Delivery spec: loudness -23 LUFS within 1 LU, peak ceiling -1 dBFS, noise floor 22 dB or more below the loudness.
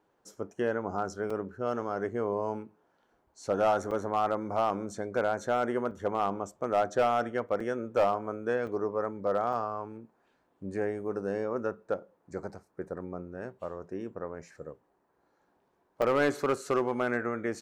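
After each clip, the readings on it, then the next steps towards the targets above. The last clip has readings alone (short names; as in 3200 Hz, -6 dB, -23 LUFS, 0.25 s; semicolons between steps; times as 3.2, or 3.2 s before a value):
clipped 0.4%; flat tops at -18.5 dBFS; dropouts 7; longest dropout 4.5 ms; loudness -31.5 LUFS; peak -18.5 dBFS; loudness target -23.0 LUFS
-> clip repair -18.5 dBFS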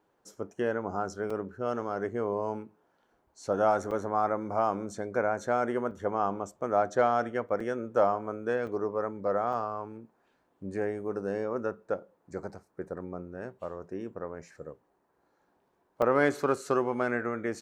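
clipped 0.0%; dropouts 7; longest dropout 4.5 ms
-> interpolate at 1.3/3.91/5.91/7.6/8.67/9.53/16.02, 4.5 ms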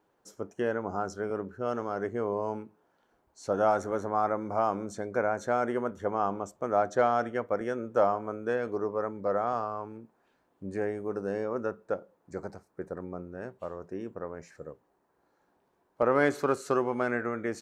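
dropouts 0; loudness -31.0 LUFS; peak -11.5 dBFS; loudness target -23.0 LUFS
-> gain +8 dB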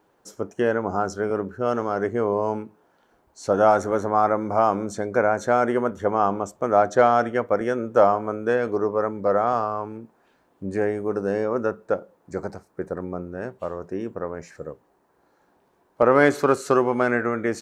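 loudness -23.0 LUFS; peak -3.5 dBFS; noise floor -64 dBFS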